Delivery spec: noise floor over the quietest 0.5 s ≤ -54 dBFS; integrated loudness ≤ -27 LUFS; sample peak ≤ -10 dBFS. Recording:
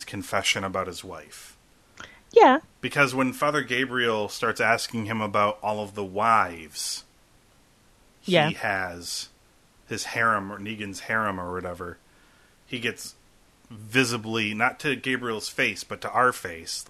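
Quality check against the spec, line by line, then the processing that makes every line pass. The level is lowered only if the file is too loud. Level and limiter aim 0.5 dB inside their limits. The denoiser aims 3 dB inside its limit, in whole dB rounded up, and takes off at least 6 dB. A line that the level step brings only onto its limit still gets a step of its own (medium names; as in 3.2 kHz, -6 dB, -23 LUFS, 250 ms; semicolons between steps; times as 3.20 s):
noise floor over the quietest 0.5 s -59 dBFS: pass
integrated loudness -25.0 LUFS: fail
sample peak -4.5 dBFS: fail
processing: trim -2.5 dB; peak limiter -10.5 dBFS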